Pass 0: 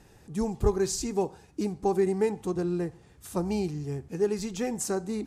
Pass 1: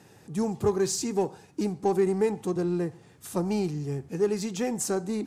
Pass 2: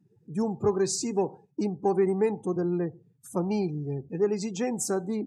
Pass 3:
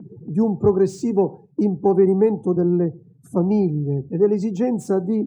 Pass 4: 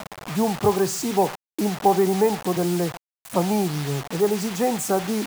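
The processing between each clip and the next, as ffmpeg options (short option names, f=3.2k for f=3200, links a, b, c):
-filter_complex "[0:a]highpass=f=100:w=0.5412,highpass=f=100:w=1.3066,asplit=2[a][b];[b]asoftclip=type=tanh:threshold=-31.5dB,volume=-8dB[c];[a][c]amix=inputs=2:normalize=0"
-af "highpass=96,afftdn=nr=31:nf=-43"
-filter_complex "[0:a]tiltshelf=f=1.1k:g=8.5,acrossover=split=120|670|2000[a][b][c][d];[b]acompressor=mode=upward:threshold=-28dB:ratio=2.5[e];[d]asoftclip=type=tanh:threshold=-39.5dB[f];[a][e][c][f]amix=inputs=4:normalize=0,volume=2dB"
-af "crystalizer=i=1.5:c=0,acrusher=bits=5:mix=0:aa=0.000001,lowshelf=f=510:t=q:w=1.5:g=-8.5,volume=5dB"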